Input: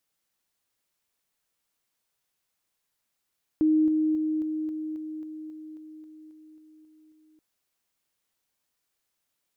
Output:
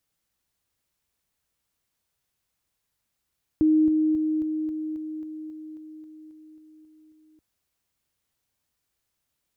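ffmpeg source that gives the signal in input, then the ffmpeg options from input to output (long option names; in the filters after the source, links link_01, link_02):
-f lavfi -i "aevalsrc='pow(10,(-18-3*floor(t/0.27))/20)*sin(2*PI*311*t)':duration=3.78:sample_rate=44100"
-af "equalizer=frequency=62:width=0.49:gain=12.5"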